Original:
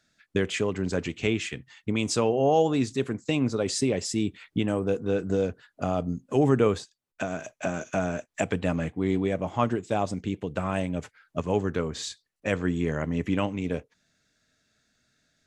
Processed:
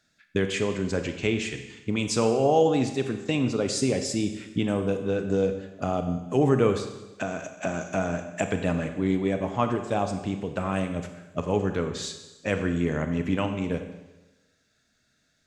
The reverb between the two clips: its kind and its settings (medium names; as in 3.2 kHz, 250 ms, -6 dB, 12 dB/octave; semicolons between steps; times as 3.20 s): Schroeder reverb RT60 1.1 s, combs from 31 ms, DRR 7 dB